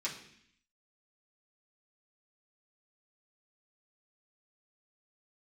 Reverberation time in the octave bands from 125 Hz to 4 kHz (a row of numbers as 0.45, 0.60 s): 0.80, 0.85, 0.65, 0.65, 0.85, 0.80 s